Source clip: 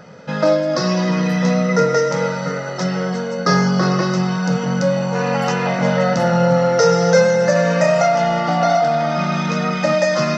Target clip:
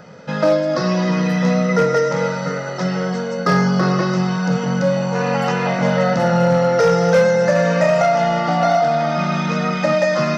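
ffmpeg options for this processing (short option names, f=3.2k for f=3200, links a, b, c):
-filter_complex "[0:a]acrossover=split=3900[a][b];[b]acompressor=threshold=-36dB:ratio=4:attack=1:release=60[c];[a][c]amix=inputs=2:normalize=0,asoftclip=type=hard:threshold=-8dB"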